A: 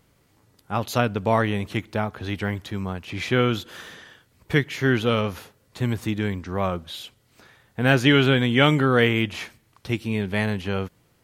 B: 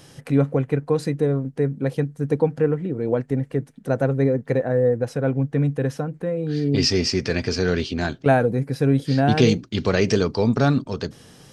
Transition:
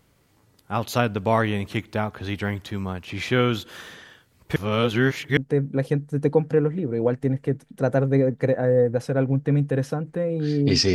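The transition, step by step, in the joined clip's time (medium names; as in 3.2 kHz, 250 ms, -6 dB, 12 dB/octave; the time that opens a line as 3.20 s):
A
4.56–5.37 s: reverse
5.37 s: go over to B from 1.44 s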